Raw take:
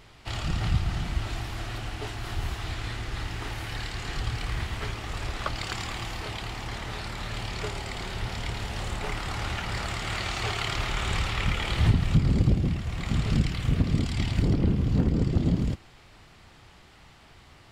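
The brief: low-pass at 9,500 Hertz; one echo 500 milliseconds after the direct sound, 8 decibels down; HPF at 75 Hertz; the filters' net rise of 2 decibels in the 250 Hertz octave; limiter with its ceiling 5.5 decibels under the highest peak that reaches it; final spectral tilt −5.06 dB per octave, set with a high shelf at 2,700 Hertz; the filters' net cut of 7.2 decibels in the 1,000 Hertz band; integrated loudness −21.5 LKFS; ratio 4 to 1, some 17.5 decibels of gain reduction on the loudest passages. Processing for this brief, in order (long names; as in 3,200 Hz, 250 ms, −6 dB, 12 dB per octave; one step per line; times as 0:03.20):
high-pass filter 75 Hz
low-pass filter 9,500 Hz
parametric band 250 Hz +3.5 dB
parametric band 1,000 Hz −9 dB
high-shelf EQ 2,700 Hz −7 dB
downward compressor 4 to 1, threshold −39 dBFS
brickwall limiter −32 dBFS
single-tap delay 500 ms −8 dB
level +20.5 dB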